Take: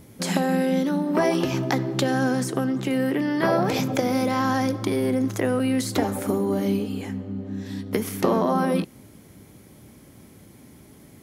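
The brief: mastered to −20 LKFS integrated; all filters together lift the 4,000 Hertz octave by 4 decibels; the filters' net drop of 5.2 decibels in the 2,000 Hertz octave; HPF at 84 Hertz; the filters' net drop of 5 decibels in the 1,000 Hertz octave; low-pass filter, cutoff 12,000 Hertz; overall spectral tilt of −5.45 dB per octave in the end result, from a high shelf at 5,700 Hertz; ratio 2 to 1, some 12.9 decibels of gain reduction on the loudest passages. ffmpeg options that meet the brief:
ffmpeg -i in.wav -af "highpass=84,lowpass=12000,equalizer=frequency=1000:width_type=o:gain=-6,equalizer=frequency=2000:width_type=o:gain=-6,equalizer=frequency=4000:width_type=o:gain=8.5,highshelf=frequency=5700:gain=-3.5,acompressor=threshold=-44dB:ratio=2,volume=17dB" out.wav

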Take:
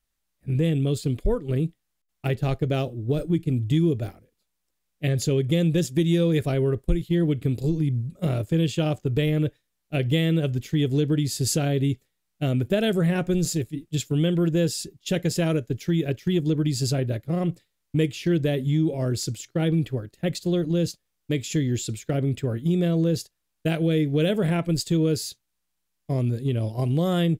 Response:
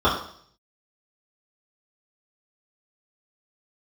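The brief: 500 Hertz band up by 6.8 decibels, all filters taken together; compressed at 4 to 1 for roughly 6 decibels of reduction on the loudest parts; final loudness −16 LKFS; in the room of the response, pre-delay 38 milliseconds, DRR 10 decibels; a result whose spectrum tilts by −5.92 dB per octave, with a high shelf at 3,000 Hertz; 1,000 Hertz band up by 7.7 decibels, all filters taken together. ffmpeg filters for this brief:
-filter_complex "[0:a]equalizer=frequency=500:width_type=o:gain=6.5,equalizer=frequency=1000:width_type=o:gain=8,highshelf=frequency=3000:gain=4,acompressor=threshold=-20dB:ratio=4,asplit=2[link_01][link_02];[1:a]atrim=start_sample=2205,adelay=38[link_03];[link_02][link_03]afir=irnorm=-1:irlink=0,volume=-30.5dB[link_04];[link_01][link_04]amix=inputs=2:normalize=0,volume=9dB"

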